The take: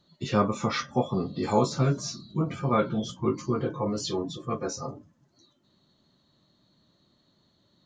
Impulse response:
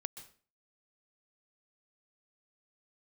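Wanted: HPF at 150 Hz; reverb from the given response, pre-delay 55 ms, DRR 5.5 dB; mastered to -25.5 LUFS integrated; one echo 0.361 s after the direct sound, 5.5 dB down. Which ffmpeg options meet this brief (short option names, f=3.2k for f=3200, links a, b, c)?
-filter_complex "[0:a]highpass=150,aecho=1:1:361:0.531,asplit=2[a][b];[1:a]atrim=start_sample=2205,adelay=55[c];[b][c]afir=irnorm=-1:irlink=0,volume=-3.5dB[d];[a][d]amix=inputs=2:normalize=0,volume=1.5dB"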